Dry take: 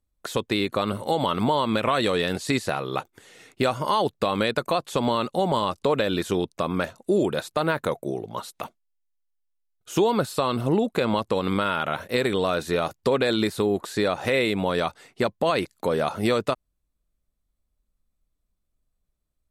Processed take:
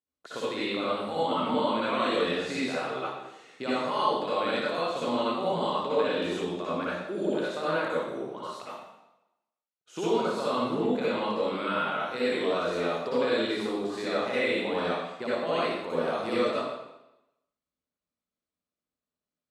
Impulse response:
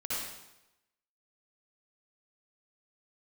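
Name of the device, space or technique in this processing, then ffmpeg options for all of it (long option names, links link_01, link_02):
supermarket ceiling speaker: -filter_complex "[0:a]highpass=210,lowpass=6300[link_01];[1:a]atrim=start_sample=2205[link_02];[link_01][link_02]afir=irnorm=-1:irlink=0,volume=-8dB"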